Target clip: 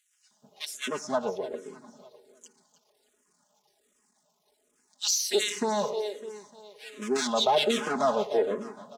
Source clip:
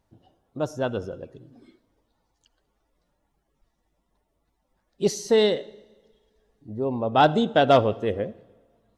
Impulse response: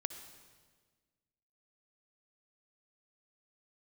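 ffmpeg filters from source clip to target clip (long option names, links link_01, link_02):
-filter_complex "[0:a]aeval=exprs='if(lt(val(0),0),0.251*val(0),val(0))':channel_layout=same,equalizer=frequency=7200:width=0.8:gain=15,acrossover=split=1800[link_01][link_02];[link_01]adelay=310[link_03];[link_03][link_02]amix=inputs=2:normalize=0,asplit=2[link_04][link_05];[link_05]acompressor=threshold=-31dB:ratio=6,volume=1dB[link_06];[link_04][link_06]amix=inputs=2:normalize=0,highpass=270,aecho=1:1:4.8:0.95,asplit=2[link_07][link_08];[link_08]aecho=0:1:302|604|906|1208:0.168|0.0755|0.034|0.0153[link_09];[link_07][link_09]amix=inputs=2:normalize=0,alimiter=limit=-13dB:level=0:latency=1:release=29,asplit=2[link_10][link_11];[link_11]afreqshift=-1.3[link_12];[link_10][link_12]amix=inputs=2:normalize=1"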